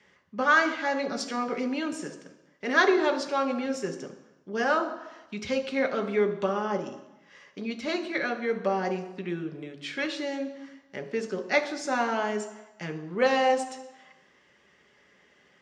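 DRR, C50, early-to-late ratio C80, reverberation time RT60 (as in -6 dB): 5.5 dB, 11.5 dB, 14.0 dB, 1.0 s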